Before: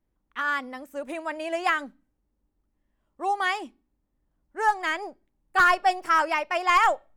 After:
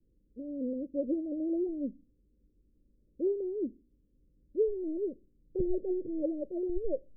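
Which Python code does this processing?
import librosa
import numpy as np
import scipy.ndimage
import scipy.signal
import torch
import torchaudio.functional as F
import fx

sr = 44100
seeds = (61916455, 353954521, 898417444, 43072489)

y = scipy.signal.sosfilt(scipy.signal.butter(16, 540.0, 'lowpass', fs=sr, output='sos'), x)
y = y * 10.0 ** (6.5 / 20.0)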